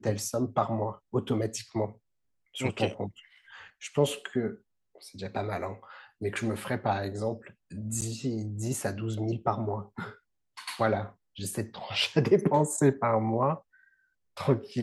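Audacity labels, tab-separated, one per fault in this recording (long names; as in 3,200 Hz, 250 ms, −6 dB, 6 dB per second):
8.010000	8.020000	drop-out 8.8 ms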